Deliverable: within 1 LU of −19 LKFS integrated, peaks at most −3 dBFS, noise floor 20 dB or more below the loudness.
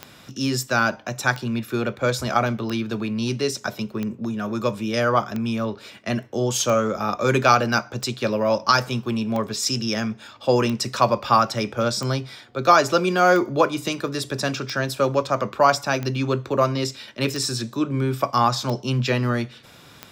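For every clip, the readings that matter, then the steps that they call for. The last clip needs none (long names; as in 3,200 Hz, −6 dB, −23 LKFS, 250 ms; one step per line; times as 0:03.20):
number of clicks 16; integrated loudness −22.5 LKFS; sample peak −3.0 dBFS; target loudness −19.0 LKFS
→ click removal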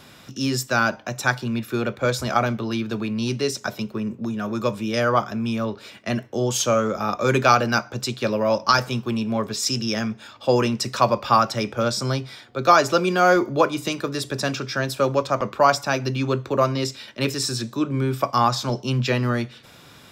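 number of clicks 0; integrated loudness −22.5 LKFS; sample peak −3.0 dBFS; target loudness −19.0 LKFS
→ level +3.5 dB
brickwall limiter −3 dBFS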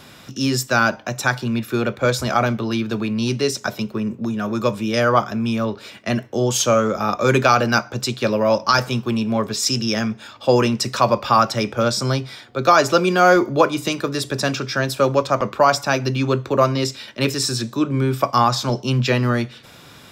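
integrated loudness −19.5 LKFS; sample peak −3.0 dBFS; background noise floor −44 dBFS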